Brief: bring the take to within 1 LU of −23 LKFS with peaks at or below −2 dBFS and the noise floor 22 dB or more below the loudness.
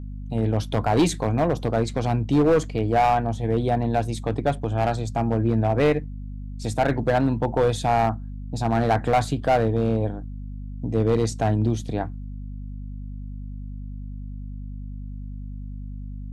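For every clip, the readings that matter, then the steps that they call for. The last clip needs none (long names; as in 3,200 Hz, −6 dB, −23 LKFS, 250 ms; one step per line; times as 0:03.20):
share of clipped samples 1.3%; peaks flattened at −13.5 dBFS; mains hum 50 Hz; hum harmonics up to 250 Hz; level of the hum −32 dBFS; integrated loudness −23.0 LKFS; sample peak −13.5 dBFS; target loudness −23.0 LKFS
→ clipped peaks rebuilt −13.5 dBFS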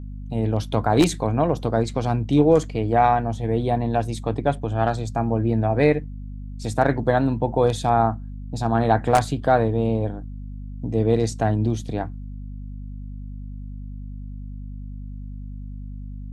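share of clipped samples 0.0%; mains hum 50 Hz; hum harmonics up to 250 Hz; level of the hum −31 dBFS
→ mains-hum notches 50/100/150/200/250 Hz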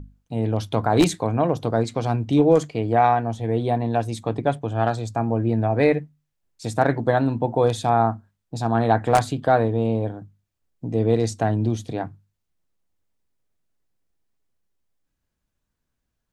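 mains hum none found; integrated loudness −22.0 LKFS; sample peak −4.0 dBFS; target loudness −23.0 LKFS
→ level −1 dB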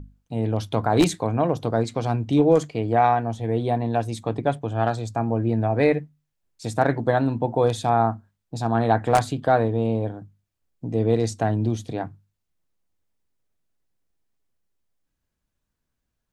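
integrated loudness −23.0 LKFS; sample peak −5.0 dBFS; background noise floor −80 dBFS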